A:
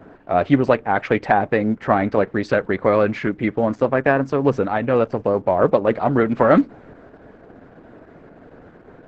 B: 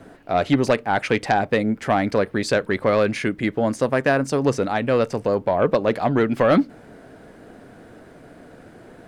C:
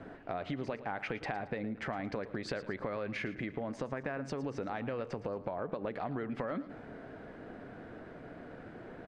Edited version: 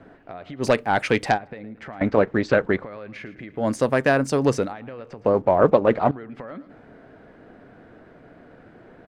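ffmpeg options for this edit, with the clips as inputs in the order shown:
-filter_complex "[1:a]asplit=2[a][b];[0:a]asplit=2[c][d];[2:a]asplit=5[e][f][g][h][i];[e]atrim=end=0.65[j];[a]atrim=start=0.59:end=1.39[k];[f]atrim=start=1.33:end=2.012[l];[c]atrim=start=2.008:end=2.832[m];[g]atrim=start=2.828:end=3.69[n];[b]atrim=start=3.53:end=4.75[o];[h]atrim=start=4.59:end=5.262[p];[d]atrim=start=5.258:end=6.112[q];[i]atrim=start=6.108[r];[j][k]acrossfade=d=0.06:c1=tri:c2=tri[s];[s][l]acrossfade=d=0.06:c1=tri:c2=tri[t];[t][m]acrossfade=d=0.004:c1=hsin:c2=hsin[u];[u][n]acrossfade=d=0.004:c1=hsin:c2=hsin[v];[v][o]acrossfade=d=0.16:c1=tri:c2=tri[w];[w][p]acrossfade=d=0.16:c1=tri:c2=tri[x];[x][q]acrossfade=d=0.004:c1=hsin:c2=hsin[y];[y][r]acrossfade=d=0.004:c1=hsin:c2=hsin"

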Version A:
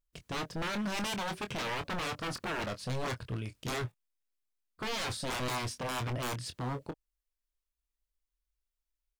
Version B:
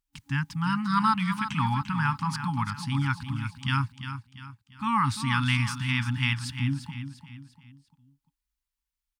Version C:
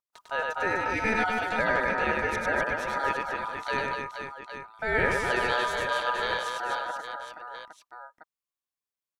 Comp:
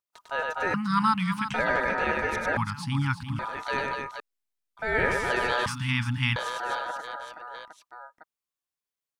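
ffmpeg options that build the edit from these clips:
-filter_complex "[1:a]asplit=3[a][b][c];[2:a]asplit=5[d][e][f][g][h];[d]atrim=end=0.742[i];[a]atrim=start=0.738:end=1.542[j];[e]atrim=start=1.538:end=2.572[k];[b]atrim=start=2.568:end=3.392[l];[f]atrim=start=3.388:end=4.202[m];[0:a]atrim=start=4.198:end=4.772[n];[g]atrim=start=4.768:end=5.662[o];[c]atrim=start=5.658:end=6.362[p];[h]atrim=start=6.358[q];[i][j]acrossfade=d=0.004:c1=hsin:c2=hsin[r];[r][k]acrossfade=d=0.004:c1=hsin:c2=hsin[s];[s][l]acrossfade=d=0.004:c1=hsin:c2=hsin[t];[t][m]acrossfade=d=0.004:c1=hsin:c2=hsin[u];[u][n]acrossfade=d=0.004:c1=hsin:c2=hsin[v];[v][o]acrossfade=d=0.004:c1=hsin:c2=hsin[w];[w][p]acrossfade=d=0.004:c1=hsin:c2=hsin[x];[x][q]acrossfade=d=0.004:c1=hsin:c2=hsin"

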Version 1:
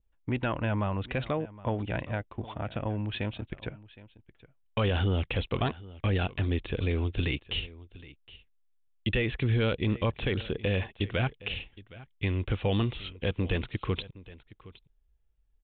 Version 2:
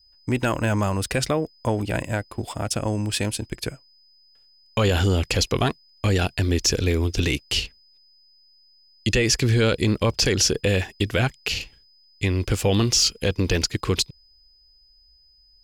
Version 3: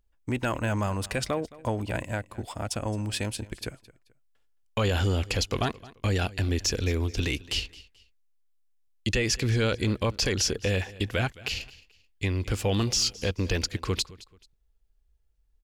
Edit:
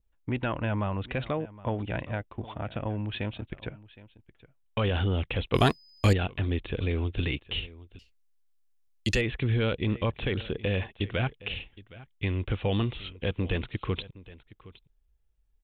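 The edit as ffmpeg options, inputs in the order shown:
-filter_complex "[0:a]asplit=3[a][b][c];[a]atrim=end=5.542[d];[1:a]atrim=start=5.538:end=6.132[e];[b]atrim=start=6.128:end=7.992[f];[2:a]atrim=start=7.988:end=9.212[g];[c]atrim=start=9.208[h];[d][e]acrossfade=d=0.004:c1=hsin:c2=hsin[i];[i][f]acrossfade=d=0.004:c1=hsin:c2=hsin[j];[j][g]acrossfade=d=0.004:c1=hsin:c2=hsin[k];[k][h]acrossfade=d=0.004:c1=hsin:c2=hsin"

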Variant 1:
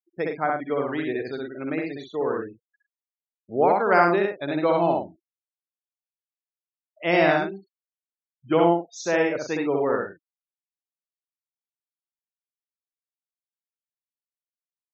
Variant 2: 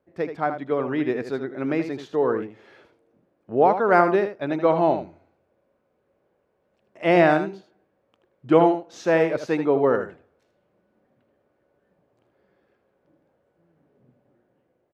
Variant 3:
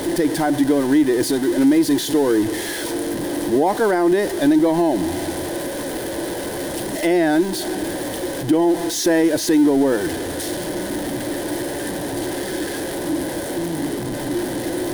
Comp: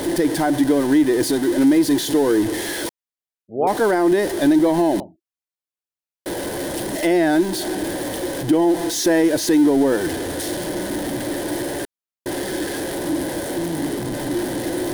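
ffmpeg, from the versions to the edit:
-filter_complex "[0:a]asplit=3[a][b][c];[2:a]asplit=4[d][e][f][g];[d]atrim=end=2.892[h];[a]atrim=start=2.888:end=3.672[i];[e]atrim=start=3.668:end=5.002[j];[b]atrim=start=4.998:end=6.262[k];[f]atrim=start=6.258:end=11.852[l];[c]atrim=start=11.848:end=12.262[m];[g]atrim=start=12.258[n];[h][i]acrossfade=d=0.004:c1=hsin:c2=hsin[o];[o][j]acrossfade=d=0.004:c1=hsin:c2=hsin[p];[p][k]acrossfade=d=0.004:c1=hsin:c2=hsin[q];[q][l]acrossfade=d=0.004:c1=hsin:c2=hsin[r];[r][m]acrossfade=d=0.004:c1=hsin:c2=hsin[s];[s][n]acrossfade=d=0.004:c1=hsin:c2=hsin"

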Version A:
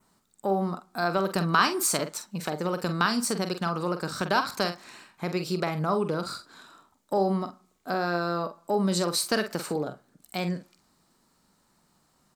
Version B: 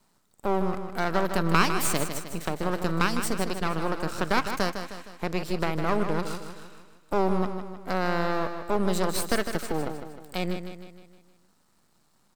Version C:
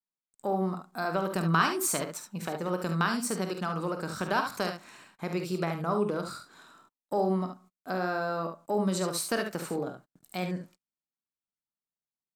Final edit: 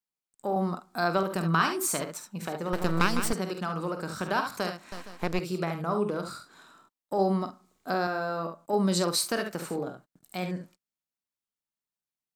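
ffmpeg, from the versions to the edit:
-filter_complex "[0:a]asplit=3[a][b][c];[1:a]asplit=2[d][e];[2:a]asplit=6[f][g][h][i][j][k];[f]atrim=end=0.562[l];[a]atrim=start=0.558:end=1.232[m];[g]atrim=start=1.228:end=2.732[n];[d]atrim=start=2.728:end=3.332[o];[h]atrim=start=3.328:end=4.922[p];[e]atrim=start=4.918:end=5.392[q];[i]atrim=start=5.388:end=7.192[r];[b]atrim=start=7.188:end=8.072[s];[j]atrim=start=8.068:end=8.732[t];[c]atrim=start=8.728:end=9.302[u];[k]atrim=start=9.298[v];[l][m]acrossfade=d=0.004:c1=hsin:c2=hsin[w];[w][n]acrossfade=d=0.004:c1=hsin:c2=hsin[x];[x][o]acrossfade=d=0.004:c1=hsin:c2=hsin[y];[y][p]acrossfade=d=0.004:c1=hsin:c2=hsin[z];[z][q]acrossfade=d=0.004:c1=hsin:c2=hsin[aa];[aa][r]acrossfade=d=0.004:c1=hsin:c2=hsin[ab];[ab][s]acrossfade=d=0.004:c1=hsin:c2=hsin[ac];[ac][t]acrossfade=d=0.004:c1=hsin:c2=hsin[ad];[ad][u]acrossfade=d=0.004:c1=hsin:c2=hsin[ae];[ae][v]acrossfade=d=0.004:c1=hsin:c2=hsin"

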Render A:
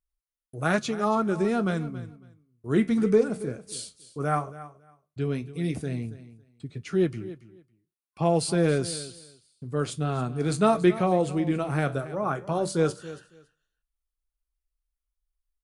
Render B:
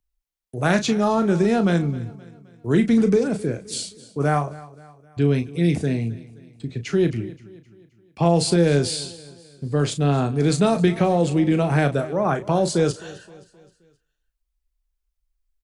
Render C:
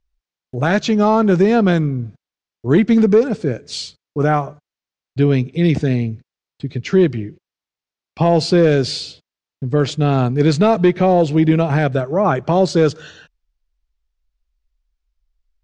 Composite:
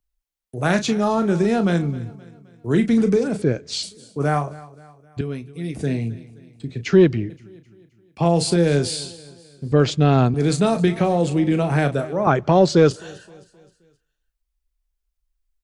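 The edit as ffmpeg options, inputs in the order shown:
-filter_complex "[2:a]asplit=4[a][b][c][d];[1:a]asplit=6[e][f][g][h][i][j];[e]atrim=end=3.422[k];[a]atrim=start=3.418:end=3.832[l];[f]atrim=start=3.828:end=5.212[m];[0:a]atrim=start=5.208:end=5.792[n];[g]atrim=start=5.788:end=6.862[o];[b]atrim=start=6.858:end=7.302[p];[h]atrim=start=7.298:end=9.722[q];[c]atrim=start=9.718:end=10.342[r];[i]atrim=start=10.338:end=12.272[s];[d]atrim=start=12.268:end=12.912[t];[j]atrim=start=12.908[u];[k][l]acrossfade=d=0.004:c1=hsin:c2=hsin[v];[v][m]acrossfade=d=0.004:c1=hsin:c2=hsin[w];[w][n]acrossfade=d=0.004:c1=hsin:c2=hsin[x];[x][o]acrossfade=d=0.004:c1=hsin:c2=hsin[y];[y][p]acrossfade=d=0.004:c1=hsin:c2=hsin[z];[z][q]acrossfade=d=0.004:c1=hsin:c2=hsin[aa];[aa][r]acrossfade=d=0.004:c1=hsin:c2=hsin[ab];[ab][s]acrossfade=d=0.004:c1=hsin:c2=hsin[ac];[ac][t]acrossfade=d=0.004:c1=hsin:c2=hsin[ad];[ad][u]acrossfade=d=0.004:c1=hsin:c2=hsin"

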